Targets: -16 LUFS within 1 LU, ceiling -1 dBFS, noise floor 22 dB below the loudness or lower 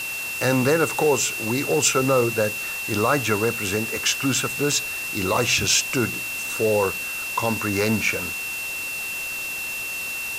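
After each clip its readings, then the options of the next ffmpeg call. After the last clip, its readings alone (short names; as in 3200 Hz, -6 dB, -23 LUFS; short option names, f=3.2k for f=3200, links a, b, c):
steady tone 2700 Hz; tone level -28 dBFS; noise floor -30 dBFS; noise floor target -44 dBFS; loudness -22.0 LUFS; peak -5.5 dBFS; loudness target -16.0 LUFS
-> -af "bandreject=f=2.7k:w=30"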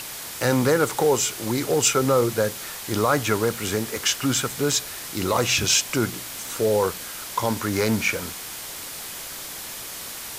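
steady tone none; noise floor -36 dBFS; noise floor target -46 dBFS
-> -af "afftdn=nr=10:nf=-36"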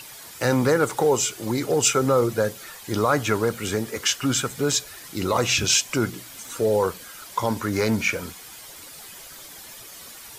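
noise floor -42 dBFS; noise floor target -45 dBFS
-> -af "afftdn=nr=6:nf=-42"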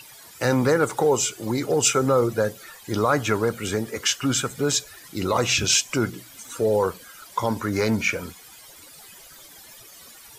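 noise floor -47 dBFS; loudness -23.0 LUFS; peak -6.0 dBFS; loudness target -16.0 LUFS
-> -af "volume=7dB,alimiter=limit=-1dB:level=0:latency=1"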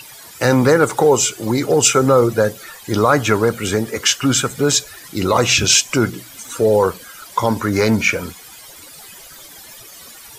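loudness -16.0 LUFS; peak -1.0 dBFS; noise floor -40 dBFS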